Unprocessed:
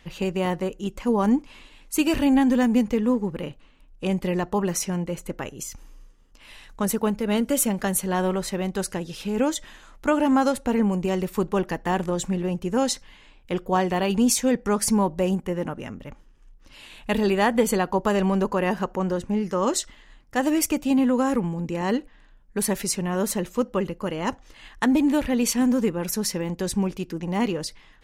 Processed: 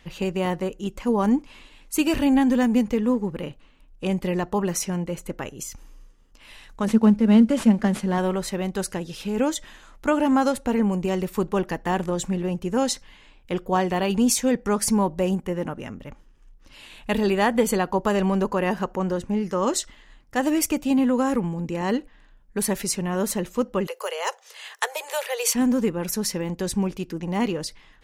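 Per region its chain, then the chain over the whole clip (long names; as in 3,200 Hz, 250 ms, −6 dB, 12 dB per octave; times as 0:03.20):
0:06.87–0:08.18: variable-slope delta modulation 64 kbit/s + low-pass filter 3,600 Hz 6 dB per octave + parametric band 220 Hz +12 dB 0.32 octaves
0:23.87–0:25.55: Butterworth high-pass 410 Hz 96 dB per octave + high-shelf EQ 4,300 Hz +10.5 dB + multiband upward and downward compressor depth 40%
whole clip: no processing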